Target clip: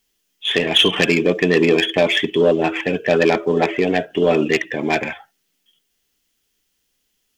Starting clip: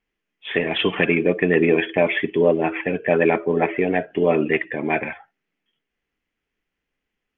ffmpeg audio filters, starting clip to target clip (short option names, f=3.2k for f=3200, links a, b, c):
-af "acontrast=44,aexciter=amount=3.9:drive=9.2:freq=3.3k,volume=-2.5dB"